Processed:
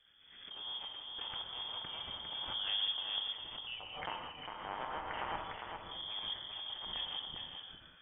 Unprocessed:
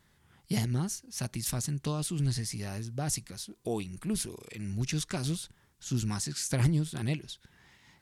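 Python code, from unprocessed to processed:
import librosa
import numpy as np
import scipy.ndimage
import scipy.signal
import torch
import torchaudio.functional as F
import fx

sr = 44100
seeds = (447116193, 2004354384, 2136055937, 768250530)

y = fx.rattle_buzz(x, sr, strikes_db=-34.0, level_db=-24.0)
y = fx.highpass(y, sr, hz=830.0, slope=12, at=(3.23, 5.38))
y = fx.over_compress(y, sr, threshold_db=-37.0, ratio=-1.0)
y = fx.rotary(y, sr, hz=8.0)
y = y + 10.0 ** (-5.0 / 20.0) * np.pad(y, (int(404 * sr / 1000.0), 0))[:len(y)]
y = fx.rev_gated(y, sr, seeds[0], gate_ms=220, shape='flat', drr_db=1.0)
y = fx.freq_invert(y, sr, carrier_hz=3400)
y = fx.pre_swell(y, sr, db_per_s=53.0)
y = F.gain(torch.from_numpy(y), -6.0).numpy()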